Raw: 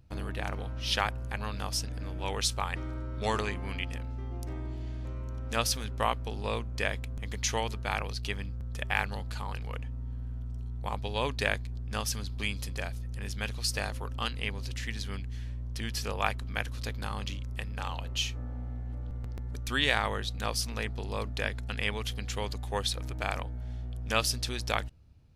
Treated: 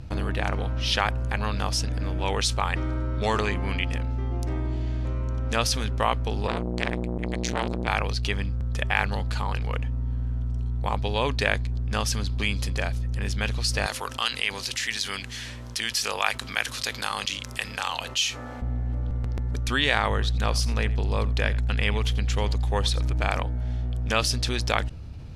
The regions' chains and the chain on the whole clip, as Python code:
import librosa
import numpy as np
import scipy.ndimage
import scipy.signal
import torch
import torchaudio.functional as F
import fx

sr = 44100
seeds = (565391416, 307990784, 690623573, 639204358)

y = fx.chain(x, sr, fx.ripple_eq(per_octave=1.0, db=6),
    fx.transformer_sat(knee_hz=1800.0), at=(6.47, 7.88))
y = fx.chain(y, sr, fx.highpass(hz=1100.0, slope=6),
    fx.high_shelf(hz=4800.0, db=9.0), at=(13.86, 18.62))
y = fx.chain(y, sr, fx.peak_eq(hz=67.0, db=6.0, octaves=2.4),
    fx.echo_single(ms=86, db=-19.0), at=(20.1, 23.29))
y = scipy.signal.sosfilt(scipy.signal.butter(2, 11000.0, 'lowpass', fs=sr, output='sos'), y)
y = fx.high_shelf(y, sr, hz=7500.0, db=-5.5)
y = fx.env_flatten(y, sr, amount_pct=50)
y = y * 10.0 ** (3.0 / 20.0)